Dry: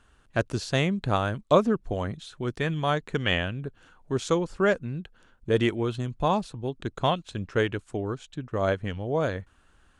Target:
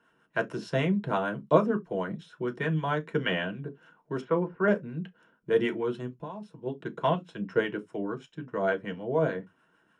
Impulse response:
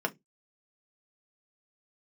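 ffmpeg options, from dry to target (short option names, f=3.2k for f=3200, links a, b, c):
-filter_complex "[0:a]asettb=1/sr,asplit=3[a][b][c];[a]atrim=end=4.214[d];[b]atrim=start=4.21:end=4.68,asetpts=PTS-STARTPTS,afade=t=in:d=0.004:c=qsin,afade=t=out:st=0.466:d=0.004:c=qsin,lowpass=f=2.3k:w=0.5412,lowpass=f=2.3k:w=1.3066[e];[c]atrim=start=4.676[f];[d][e]acrossfade=d=0.004:c1=hsin:c2=qsin[g];[g][f]acrossfade=d=0.004:c1=qsin:c2=hsin,asplit=3[h][i][j];[h]afade=t=out:st=6.06:d=0.02[k];[i]acompressor=threshold=-35dB:ratio=10,afade=t=in:st=6.06:d=0.02,afade=t=out:st=6.65:d=0.02[l];[j]afade=t=in:st=6.65:d=0.02[m];[k][l][m]amix=inputs=3:normalize=0,acrossover=split=700[n][o];[n]aeval=exprs='val(0)*(1-0.5/2+0.5/2*cos(2*PI*6.6*n/s))':c=same[p];[o]aeval=exprs='val(0)*(1-0.5/2-0.5/2*cos(2*PI*6.6*n/s))':c=same[q];[p][q]amix=inputs=2:normalize=0[r];[1:a]atrim=start_sample=2205,atrim=end_sample=4410[s];[r][s]afir=irnorm=-1:irlink=0,volume=-7.5dB"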